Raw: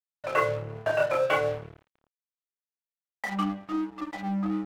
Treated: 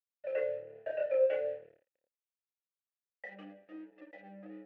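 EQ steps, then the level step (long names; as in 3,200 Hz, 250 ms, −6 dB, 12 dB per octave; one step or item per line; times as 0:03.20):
formant filter e
high-shelf EQ 2,500 Hz −9.5 dB
0.0 dB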